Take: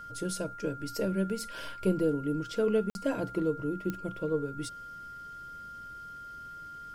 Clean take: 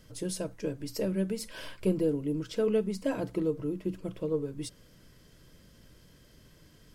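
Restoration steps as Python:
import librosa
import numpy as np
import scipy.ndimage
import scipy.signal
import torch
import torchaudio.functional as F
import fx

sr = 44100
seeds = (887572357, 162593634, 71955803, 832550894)

y = fx.fix_declick_ar(x, sr, threshold=10.0)
y = fx.notch(y, sr, hz=1400.0, q=30.0)
y = fx.fix_interpolate(y, sr, at_s=(2.9,), length_ms=51.0)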